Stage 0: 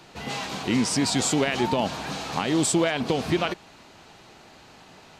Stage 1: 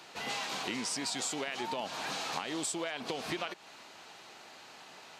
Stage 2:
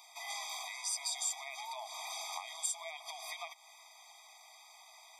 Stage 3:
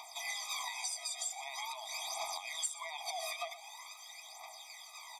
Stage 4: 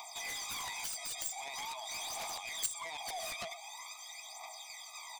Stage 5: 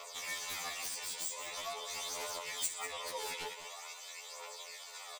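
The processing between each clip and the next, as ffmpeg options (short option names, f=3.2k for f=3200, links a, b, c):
-af "highpass=f=700:p=1,acompressor=threshold=-33dB:ratio=6"
-af "crystalizer=i=2.5:c=0,afftfilt=real='re*eq(mod(floor(b*sr/1024/640),2),1)':imag='im*eq(mod(floor(b*sr/1024/640),2),1)':win_size=1024:overlap=0.75,volume=-6dB"
-filter_complex "[0:a]acompressor=threshold=-43dB:ratio=12,aphaser=in_gain=1:out_gain=1:delay=1.7:decay=0.66:speed=0.45:type=triangular,asplit=2[a][b];[b]adelay=122.4,volume=-15dB,highshelf=f=4k:g=-2.76[c];[a][c]amix=inputs=2:normalize=0,volume=4.5dB"
-af "aexciter=amount=1.1:drive=2.8:freq=6.8k,aeval=exprs='0.0944*(cos(1*acos(clip(val(0)/0.0944,-1,1)))-cos(1*PI/2))+0.00237*(cos(4*acos(clip(val(0)/0.0944,-1,1)))-cos(4*PI/2))+0.0015*(cos(6*acos(clip(val(0)/0.0944,-1,1)))-cos(6*PI/2))+0.0376*(cos(7*acos(clip(val(0)/0.0944,-1,1)))-cos(7*PI/2))+0.00133*(cos(8*acos(clip(val(0)/0.0944,-1,1)))-cos(8*PI/2))':c=same,volume=-2.5dB"
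-af "aeval=exprs='val(0)*sin(2*PI*220*n/s)':c=same,aecho=1:1:194:0.266,afftfilt=real='re*2*eq(mod(b,4),0)':imag='im*2*eq(mod(b,4),0)':win_size=2048:overlap=0.75,volume=5dB"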